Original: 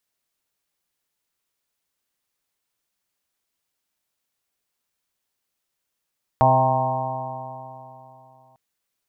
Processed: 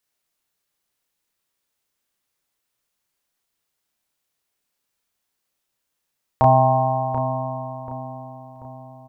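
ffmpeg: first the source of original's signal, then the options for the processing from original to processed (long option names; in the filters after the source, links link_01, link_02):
-f lavfi -i "aevalsrc='0.112*pow(10,-3*t/3.08)*sin(2*PI*128.09*t)+0.0473*pow(10,-3*t/3.08)*sin(2*PI*256.72*t)+0.0158*pow(10,-3*t/3.08)*sin(2*PI*386.41*t)+0.0335*pow(10,-3*t/3.08)*sin(2*PI*517.7*t)+0.133*pow(10,-3*t/3.08)*sin(2*PI*651.1*t)+0.158*pow(10,-3*t/3.08)*sin(2*PI*787.12*t)+0.126*pow(10,-3*t/3.08)*sin(2*PI*926.22*t)+0.0668*pow(10,-3*t/3.08)*sin(2*PI*1068.89*t)':duration=2.15:sample_rate=44100"
-filter_complex "[0:a]asplit=2[link_01][link_02];[link_02]adelay=32,volume=-3dB[link_03];[link_01][link_03]amix=inputs=2:normalize=0,asplit=2[link_04][link_05];[link_05]adelay=736,lowpass=frequency=1300:poles=1,volume=-8.5dB,asplit=2[link_06][link_07];[link_07]adelay=736,lowpass=frequency=1300:poles=1,volume=0.49,asplit=2[link_08][link_09];[link_09]adelay=736,lowpass=frequency=1300:poles=1,volume=0.49,asplit=2[link_10][link_11];[link_11]adelay=736,lowpass=frequency=1300:poles=1,volume=0.49,asplit=2[link_12][link_13];[link_13]adelay=736,lowpass=frequency=1300:poles=1,volume=0.49,asplit=2[link_14][link_15];[link_15]adelay=736,lowpass=frequency=1300:poles=1,volume=0.49[link_16];[link_06][link_08][link_10][link_12][link_14][link_16]amix=inputs=6:normalize=0[link_17];[link_04][link_17]amix=inputs=2:normalize=0"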